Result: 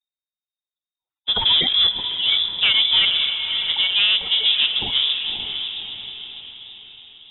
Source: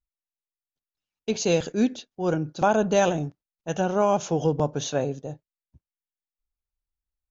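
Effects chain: coarse spectral quantiser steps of 30 dB; de-hum 60.8 Hz, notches 9; waveshaping leveller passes 2; on a send: echo that smears into a reverb 573 ms, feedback 47%, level -6.5 dB; on the sum: frequency inversion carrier 3.7 kHz; 1.36–1.89 s: level flattener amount 70%; trim -1 dB

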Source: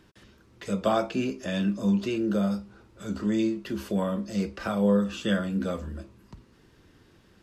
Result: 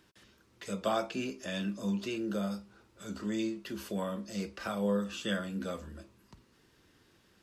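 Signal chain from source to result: tilt EQ +1.5 dB/octave; trim -5.5 dB

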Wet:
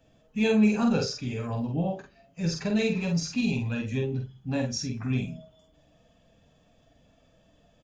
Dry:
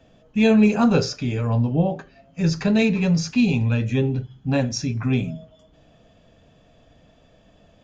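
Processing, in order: coarse spectral quantiser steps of 15 dB; treble shelf 6.2 kHz +8.5 dB; doubling 47 ms -4 dB; trim -8.5 dB

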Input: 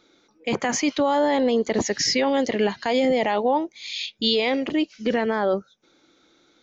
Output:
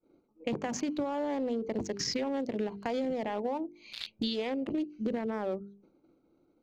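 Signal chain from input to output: local Wiener filter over 25 samples; expander -56 dBFS; bass shelf 340 Hz +7.5 dB; hum notches 50/100/150/200/250/300/350/400/450 Hz; compression 5:1, threshold -31 dBFS, peak gain reduction 15.5 dB

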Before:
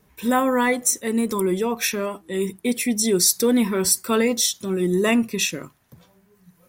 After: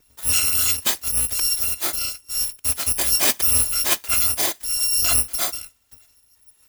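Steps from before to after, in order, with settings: bit-reversed sample order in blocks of 256 samples

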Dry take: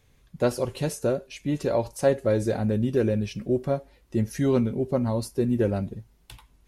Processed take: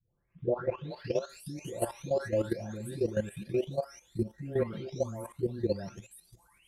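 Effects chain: delay that grows with frequency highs late, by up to 896 ms; bass shelf 89 Hz -9 dB; level held to a coarse grid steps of 13 dB

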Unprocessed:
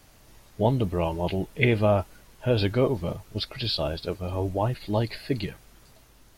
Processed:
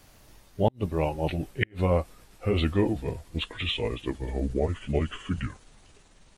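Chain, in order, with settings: pitch bend over the whole clip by -8.5 st starting unshifted; inverted gate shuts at -11 dBFS, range -37 dB

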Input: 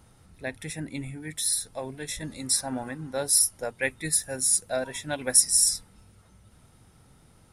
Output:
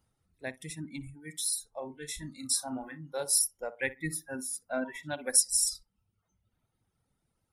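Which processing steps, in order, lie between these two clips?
reverb removal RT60 1.4 s; 1.78–3.24 s: doubling 34 ms -11 dB; filtered feedback delay 62 ms, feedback 42%, low-pass 1.1 kHz, level -12.5 dB; spectral noise reduction 14 dB; 3.95–5.03 s: ten-band graphic EQ 250 Hz +9 dB, 500 Hz -5 dB, 1 kHz +3 dB, 2 kHz +7 dB, 4 kHz -10 dB, 8 kHz -11 dB; trim -4.5 dB

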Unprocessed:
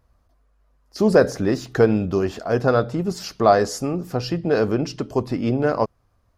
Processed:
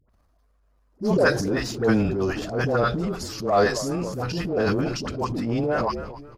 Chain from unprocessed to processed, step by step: phase dispersion highs, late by 97 ms, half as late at 780 Hz; frequency-shifting echo 268 ms, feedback 46%, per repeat -79 Hz, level -17.5 dB; in parallel at -10 dB: overload inside the chain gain 12.5 dB; on the sum: transient shaper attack -9 dB, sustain +8 dB; trim -5 dB

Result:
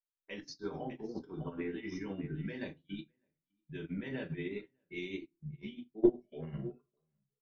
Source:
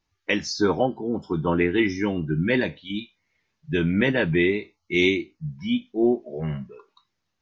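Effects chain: on a send: delay 603 ms -16.5 dB; on the sum: level-controlled noise filter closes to 2 kHz, open at -17 dBFS; level held to a coarse grid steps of 17 dB; simulated room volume 160 m³, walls furnished, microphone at 1.2 m; upward expansion 2.5:1, over -46 dBFS; trim +3 dB

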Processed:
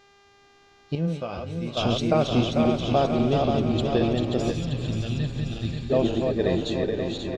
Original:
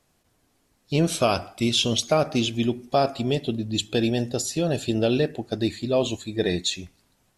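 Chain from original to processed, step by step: backward echo that repeats 266 ms, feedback 76%, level -4 dB; 4.53–5.90 s: FFT filter 150 Hz 0 dB, 410 Hz -20 dB, 3.5 kHz 0 dB; word length cut 10-bit, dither triangular; 0.95–1.77 s: feedback comb 170 Hz, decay 0.16 s, harmonics odd, mix 80%; mains buzz 400 Hz, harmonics 18, -52 dBFS -1 dB/octave; tape spacing loss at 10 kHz 24 dB; frequency-shifting echo 443 ms, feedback 63%, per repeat -71 Hz, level -13 dB

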